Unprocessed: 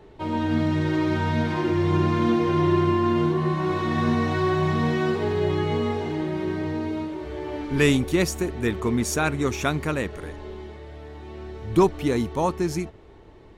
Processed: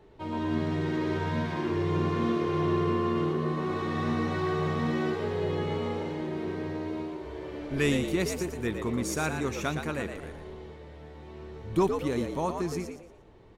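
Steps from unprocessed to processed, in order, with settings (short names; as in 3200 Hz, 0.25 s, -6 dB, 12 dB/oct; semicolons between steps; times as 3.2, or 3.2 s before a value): spectral repair 7.27–7.85, 460–1000 Hz; frequency-shifting echo 0.116 s, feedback 31%, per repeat +80 Hz, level -7 dB; gain -7 dB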